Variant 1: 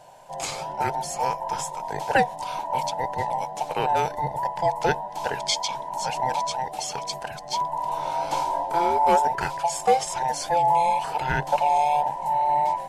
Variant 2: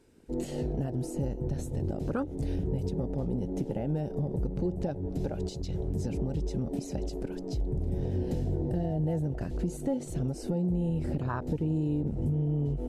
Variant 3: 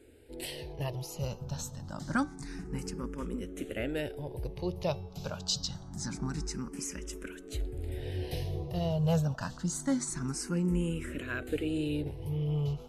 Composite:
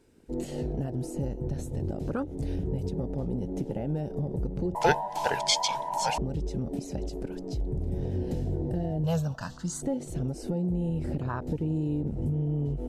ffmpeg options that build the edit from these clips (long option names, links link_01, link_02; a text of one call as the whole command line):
ffmpeg -i take0.wav -i take1.wav -i take2.wav -filter_complex "[1:a]asplit=3[link_01][link_02][link_03];[link_01]atrim=end=4.752[link_04];[0:a]atrim=start=4.748:end=6.182[link_05];[link_02]atrim=start=6.178:end=9.042[link_06];[2:a]atrim=start=9.038:end=9.822[link_07];[link_03]atrim=start=9.818[link_08];[link_04][link_05]acrossfade=duration=0.004:curve1=hsin:curve2=hsin[link_09];[link_09][link_06]acrossfade=duration=0.004:curve1=hsin:curve2=hsin[link_10];[link_10][link_07]acrossfade=duration=0.004:curve1=hsin:curve2=hsin[link_11];[link_11][link_08]acrossfade=duration=0.004:curve1=hsin:curve2=hsin" out.wav